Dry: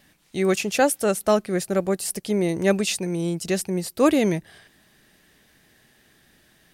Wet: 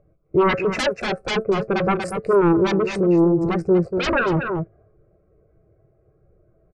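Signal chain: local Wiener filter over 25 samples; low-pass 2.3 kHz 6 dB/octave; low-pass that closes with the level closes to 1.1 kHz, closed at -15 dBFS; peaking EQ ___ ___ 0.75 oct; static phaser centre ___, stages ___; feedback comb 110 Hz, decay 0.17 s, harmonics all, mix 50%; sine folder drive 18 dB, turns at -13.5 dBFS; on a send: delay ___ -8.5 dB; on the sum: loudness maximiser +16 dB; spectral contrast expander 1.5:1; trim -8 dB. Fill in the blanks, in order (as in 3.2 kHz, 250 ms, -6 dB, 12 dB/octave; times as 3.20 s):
1.1 kHz, +4 dB, 900 Hz, 6, 238 ms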